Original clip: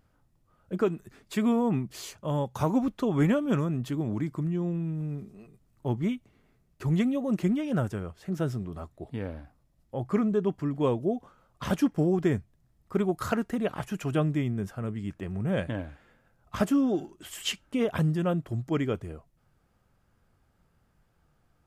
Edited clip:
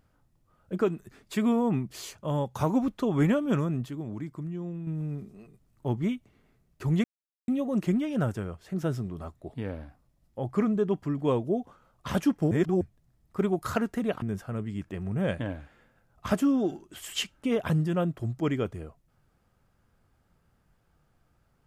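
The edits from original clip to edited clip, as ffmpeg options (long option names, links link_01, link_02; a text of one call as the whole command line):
ffmpeg -i in.wav -filter_complex "[0:a]asplit=7[link_01][link_02][link_03][link_04][link_05][link_06][link_07];[link_01]atrim=end=3.862[link_08];[link_02]atrim=start=3.858:end=4.872,asetpts=PTS-STARTPTS,volume=-6dB[link_09];[link_03]atrim=start=4.868:end=7.04,asetpts=PTS-STARTPTS,afade=type=out:start_time=2.168:duration=0.004:curve=hsin,apad=pad_dur=0.44[link_10];[link_04]atrim=start=7.04:end=12.072,asetpts=PTS-STARTPTS,afade=type=in:duration=0.004:curve=hsin[link_11];[link_05]atrim=start=12.068:end=12.372,asetpts=PTS-STARTPTS,areverse[link_12];[link_06]atrim=start=12.368:end=13.782[link_13];[link_07]atrim=start=14.508[link_14];[link_08][link_09]acrossfade=duration=0.004:curve1=hsin:curve2=hsin[link_15];[link_10][link_11]concat=n=2:v=0:a=1[link_16];[link_15][link_16]acrossfade=duration=0.004:curve1=hsin:curve2=hsin[link_17];[link_17][link_12]acrossfade=duration=0.004:curve1=hsin:curve2=hsin[link_18];[link_18][link_13]acrossfade=duration=0.004:curve1=hsin:curve2=hsin[link_19];[link_19][link_14]acrossfade=duration=0.004:curve1=hsin:curve2=hsin" out.wav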